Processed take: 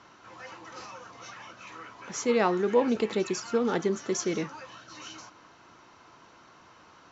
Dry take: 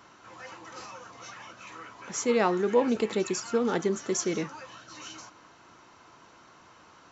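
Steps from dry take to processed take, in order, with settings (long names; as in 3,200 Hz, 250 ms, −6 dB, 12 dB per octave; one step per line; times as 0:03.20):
low-pass filter 6,600 Hz 24 dB per octave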